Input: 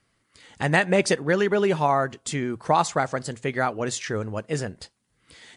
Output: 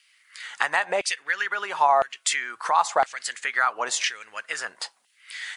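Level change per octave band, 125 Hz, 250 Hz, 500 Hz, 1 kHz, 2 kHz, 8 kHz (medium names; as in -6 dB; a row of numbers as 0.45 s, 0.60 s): under -30 dB, -22.0 dB, -6.0 dB, +2.5 dB, +2.5 dB, +4.0 dB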